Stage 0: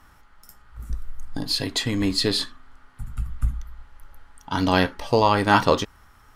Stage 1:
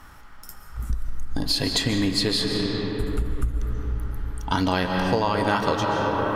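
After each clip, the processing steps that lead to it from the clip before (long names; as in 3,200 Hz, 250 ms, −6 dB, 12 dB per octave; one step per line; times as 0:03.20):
convolution reverb RT60 4.2 s, pre-delay 95 ms, DRR 4 dB
downward compressor 6 to 1, threshold −26 dBFS, peak gain reduction 14 dB
level +6.5 dB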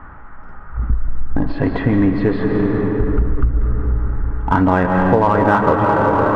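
low-pass filter 1,700 Hz 24 dB per octave
in parallel at −9 dB: hard clipping −25 dBFS, distortion −8 dB
on the sum: level +7.5 dB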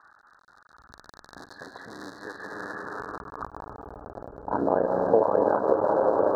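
sub-harmonics by changed cycles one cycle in 3, muted
band-pass filter sweep 2,600 Hz → 520 Hz, 0:02.07–0:04.47
Chebyshev band-stop filter 1,700–3,900 Hz, order 4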